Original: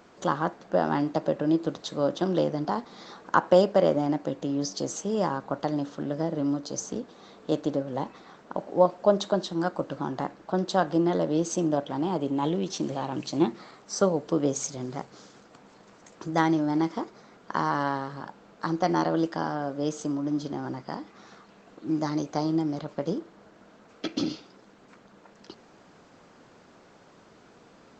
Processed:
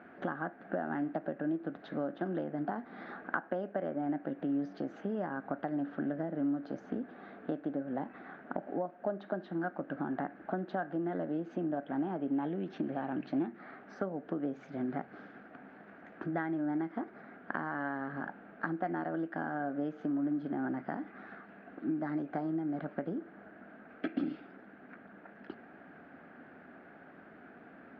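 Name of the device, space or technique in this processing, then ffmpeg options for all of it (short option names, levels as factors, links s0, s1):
bass amplifier: -af "acompressor=threshold=0.0224:ratio=5,highpass=82,equalizer=f=120:t=q:w=4:g=-9,equalizer=f=260:t=q:w=4:g=6,equalizer=f=490:t=q:w=4:g=-5,equalizer=f=710:t=q:w=4:g=5,equalizer=f=1000:t=q:w=4:g=-9,equalizer=f=1600:t=q:w=4:g=9,lowpass=f=2300:w=0.5412,lowpass=f=2300:w=1.3066"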